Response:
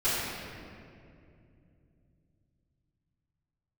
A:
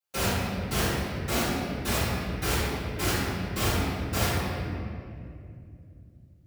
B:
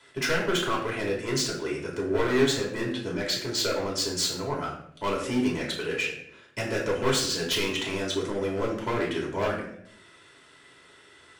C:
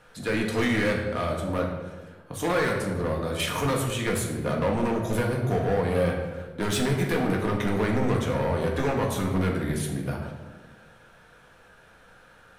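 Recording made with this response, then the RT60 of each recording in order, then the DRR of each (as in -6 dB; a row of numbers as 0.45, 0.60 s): A; 2.5, 0.65, 1.3 s; -16.5, -3.5, -1.0 dB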